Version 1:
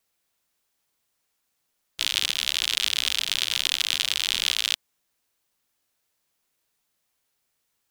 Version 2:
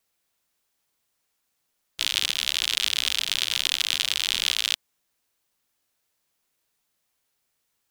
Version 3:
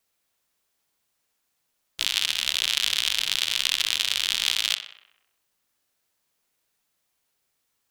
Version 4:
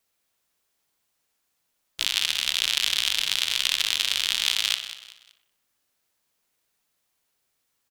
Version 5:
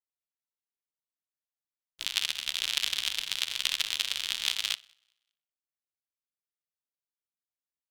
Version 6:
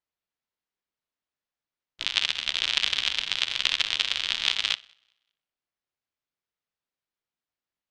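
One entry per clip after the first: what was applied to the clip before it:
nothing audible
tape echo 63 ms, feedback 65%, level -8.5 dB, low-pass 4000 Hz
feedback echo 0.19 s, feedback 35%, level -13.5 dB
upward expander 2.5:1, over -39 dBFS; gain -2 dB
air absorption 140 m; gain +8 dB

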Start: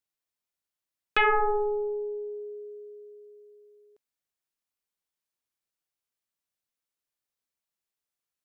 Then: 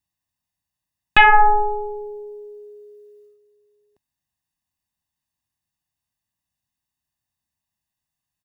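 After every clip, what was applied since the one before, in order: gate -51 dBFS, range -7 dB; bell 92 Hz +11.5 dB 3 oct; comb 1.1 ms, depth 97%; gain +8 dB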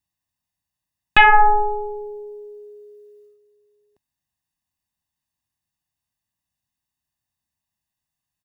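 nothing audible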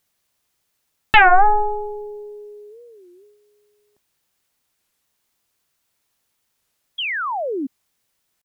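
requantised 12-bit, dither triangular; painted sound fall, 6.98–7.67, 250–3400 Hz -24 dBFS; record warp 33 1/3 rpm, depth 250 cents

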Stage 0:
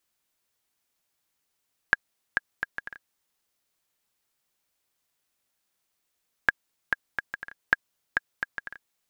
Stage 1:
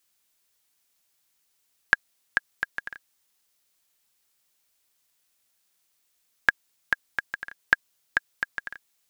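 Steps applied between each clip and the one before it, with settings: high shelf 2200 Hz +7.5 dB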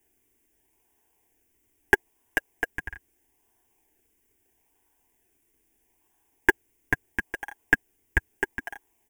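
comb 6.8 ms; in parallel at -4 dB: decimation with a swept rate 35×, swing 100% 0.77 Hz; on the sum: fixed phaser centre 850 Hz, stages 8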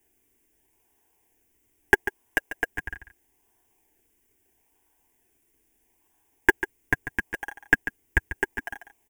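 echo 0.143 s -12 dB; gain +1 dB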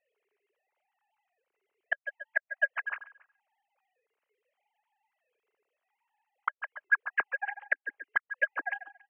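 sine-wave speech; outdoor echo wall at 48 m, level -25 dB; flipped gate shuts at -13 dBFS, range -36 dB

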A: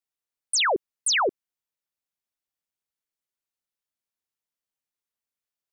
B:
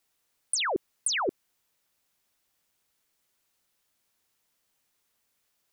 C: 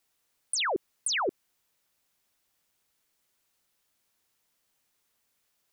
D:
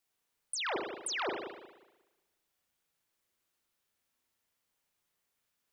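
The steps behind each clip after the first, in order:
negative-ratio compressor -29 dBFS, ratio -0.5; gain +5 dB
limiter -20 dBFS, peak gain reduction 3 dB
reverb RT60 1.1 s, pre-delay 36 ms, DRR 1 dB; gain -7.5 dB

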